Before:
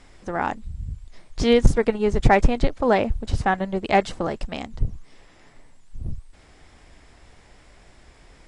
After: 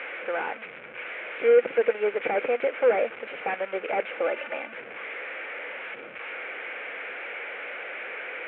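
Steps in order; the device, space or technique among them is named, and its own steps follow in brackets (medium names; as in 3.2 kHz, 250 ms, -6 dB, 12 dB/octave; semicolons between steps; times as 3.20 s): 0.59–1.70 s: high-pass 64 Hz 12 dB/octave; digital answering machine (band-pass 350–3300 Hz; one-bit delta coder 16 kbps, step -33.5 dBFS; cabinet simulation 470–3300 Hz, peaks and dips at 500 Hz +10 dB, 710 Hz -3 dB, 1 kHz -7 dB, 1.5 kHz +7 dB, 2.3 kHz +10 dB); 4.26–4.73 s: comb 3.4 ms, depth 54%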